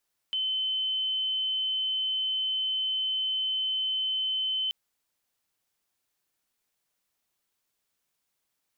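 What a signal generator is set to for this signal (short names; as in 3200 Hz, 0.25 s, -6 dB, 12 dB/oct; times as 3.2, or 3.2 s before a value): tone sine 3060 Hz -26 dBFS 4.38 s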